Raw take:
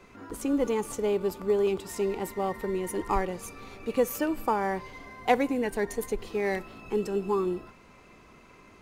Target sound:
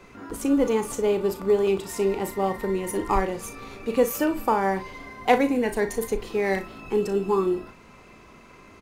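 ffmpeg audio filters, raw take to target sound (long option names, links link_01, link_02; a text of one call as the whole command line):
ffmpeg -i in.wav -af "aecho=1:1:36|58:0.316|0.158,volume=4dB" out.wav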